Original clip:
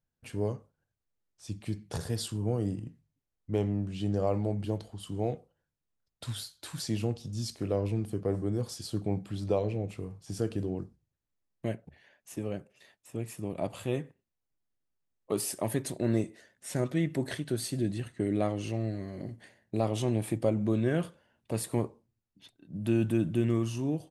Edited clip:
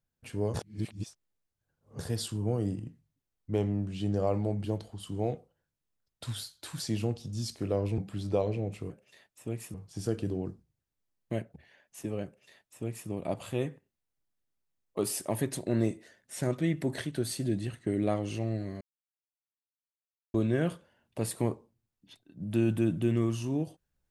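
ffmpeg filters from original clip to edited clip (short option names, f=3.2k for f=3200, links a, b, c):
-filter_complex "[0:a]asplit=8[a][b][c][d][e][f][g][h];[a]atrim=end=0.542[i];[b]atrim=start=0.538:end=1.992,asetpts=PTS-STARTPTS,areverse[j];[c]atrim=start=1.988:end=7.982[k];[d]atrim=start=9.148:end=10.072[l];[e]atrim=start=12.578:end=13.422[m];[f]atrim=start=10.068:end=19.14,asetpts=PTS-STARTPTS,afade=t=out:st=9.068:d=0.004:c=hsin[n];[g]atrim=start=19.14:end=20.67,asetpts=PTS-STARTPTS,volume=0[o];[h]atrim=start=20.67,asetpts=PTS-STARTPTS,afade=t=in:d=0.004:c=hsin[p];[i][j]acrossfade=d=0.004:c1=hsin:c2=hsin[q];[q][k]acrossfade=d=0.004:c1=hsin:c2=hsin[r];[r][l]acrossfade=d=0.004:c1=hsin:c2=hsin[s];[s][m]acrossfade=d=0.004:c1=hsin:c2=hsin[t];[n][o][p]concat=n=3:v=0:a=1[u];[t][u]acrossfade=d=0.004:c1=hsin:c2=hsin"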